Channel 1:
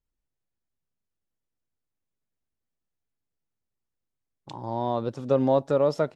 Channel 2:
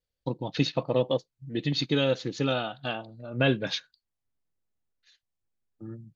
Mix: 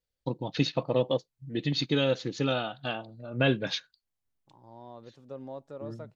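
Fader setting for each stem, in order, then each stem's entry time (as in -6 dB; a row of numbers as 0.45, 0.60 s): -19.5, -1.0 dB; 0.00, 0.00 s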